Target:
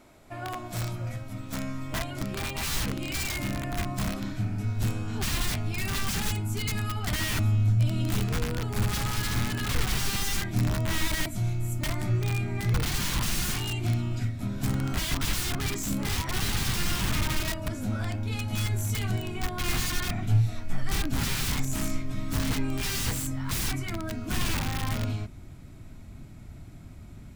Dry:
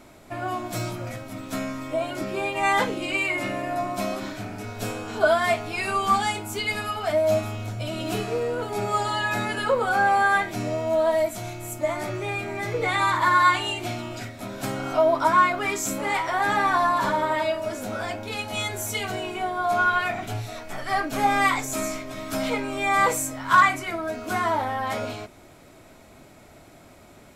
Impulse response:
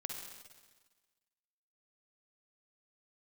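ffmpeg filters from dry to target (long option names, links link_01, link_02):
-af "aeval=exprs='(mod(10.6*val(0)+1,2)-1)/10.6':channel_layout=same,asubboost=boost=10.5:cutoff=160,volume=-6dB"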